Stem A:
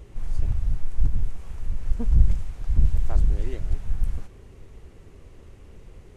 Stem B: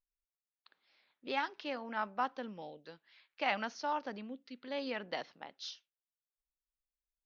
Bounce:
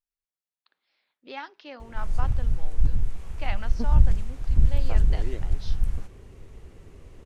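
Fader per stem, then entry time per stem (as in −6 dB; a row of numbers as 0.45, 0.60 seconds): 0.0, −2.5 decibels; 1.80, 0.00 seconds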